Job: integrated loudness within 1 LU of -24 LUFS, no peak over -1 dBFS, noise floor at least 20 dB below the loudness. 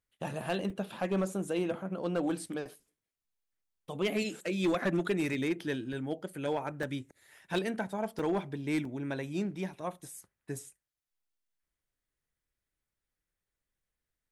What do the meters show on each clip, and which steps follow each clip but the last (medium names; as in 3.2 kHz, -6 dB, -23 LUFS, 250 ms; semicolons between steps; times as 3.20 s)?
clipped samples 0.6%; clipping level -23.5 dBFS; dropouts 5; longest dropout 2.7 ms; loudness -34.5 LUFS; peak level -23.5 dBFS; loudness target -24.0 LUFS
-> clip repair -23.5 dBFS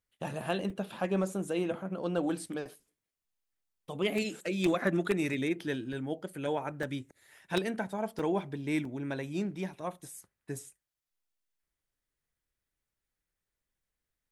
clipped samples 0.0%; dropouts 5; longest dropout 2.7 ms
-> interpolate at 0.70/5.93/6.83/8.19/8.85 s, 2.7 ms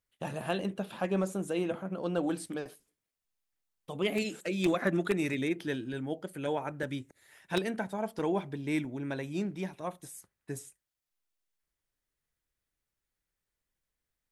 dropouts 0; loudness -34.0 LUFS; peak level -14.5 dBFS; loudness target -24.0 LUFS
-> trim +10 dB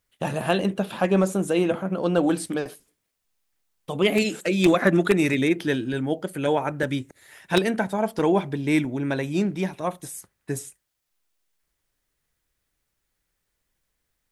loudness -24.0 LUFS; peak level -4.5 dBFS; noise floor -78 dBFS